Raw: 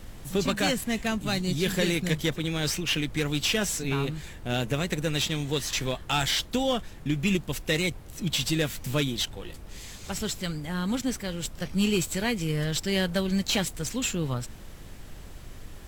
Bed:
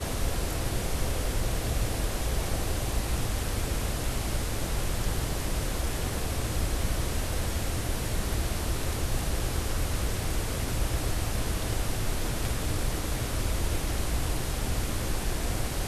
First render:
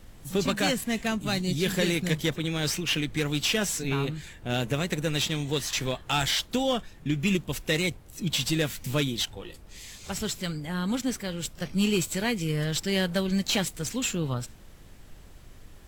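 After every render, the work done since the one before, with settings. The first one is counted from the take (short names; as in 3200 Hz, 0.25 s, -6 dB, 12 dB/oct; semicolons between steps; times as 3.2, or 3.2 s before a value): noise print and reduce 6 dB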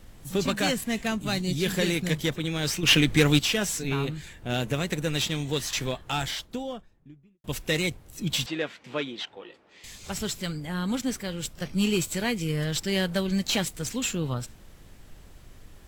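2.83–3.39 gain +8 dB; 5.7–7.44 studio fade out; 8.46–9.84 BPF 350–2700 Hz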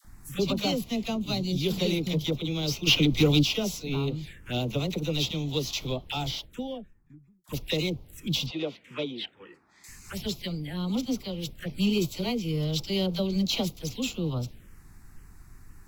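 dispersion lows, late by 47 ms, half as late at 770 Hz; envelope phaser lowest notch 440 Hz, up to 1700 Hz, full sweep at -28 dBFS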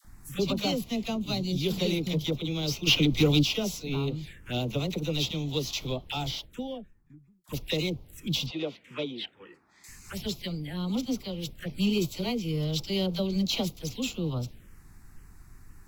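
gain -1 dB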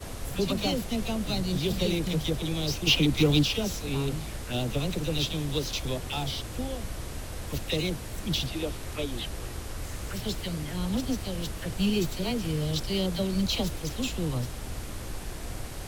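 add bed -7.5 dB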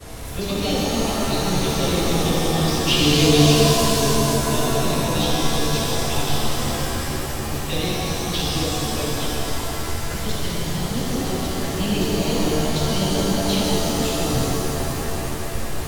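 shimmer reverb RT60 3.6 s, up +7 st, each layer -2 dB, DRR -5 dB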